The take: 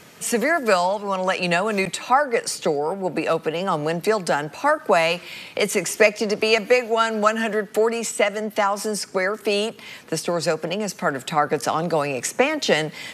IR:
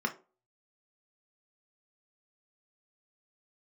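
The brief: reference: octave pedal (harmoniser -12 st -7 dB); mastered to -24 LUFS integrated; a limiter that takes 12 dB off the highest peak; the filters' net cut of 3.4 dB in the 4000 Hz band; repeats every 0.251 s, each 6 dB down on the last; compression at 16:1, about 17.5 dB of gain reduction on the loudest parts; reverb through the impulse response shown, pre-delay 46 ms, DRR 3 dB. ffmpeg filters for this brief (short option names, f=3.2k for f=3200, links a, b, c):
-filter_complex "[0:a]equalizer=f=4k:t=o:g=-5,acompressor=threshold=-29dB:ratio=16,alimiter=level_in=4dB:limit=-24dB:level=0:latency=1,volume=-4dB,aecho=1:1:251|502|753|1004|1255|1506:0.501|0.251|0.125|0.0626|0.0313|0.0157,asplit=2[a][b];[1:a]atrim=start_sample=2205,adelay=46[c];[b][c]afir=irnorm=-1:irlink=0,volume=-9.5dB[d];[a][d]amix=inputs=2:normalize=0,asplit=2[e][f];[f]asetrate=22050,aresample=44100,atempo=2,volume=-7dB[g];[e][g]amix=inputs=2:normalize=0,volume=9.5dB"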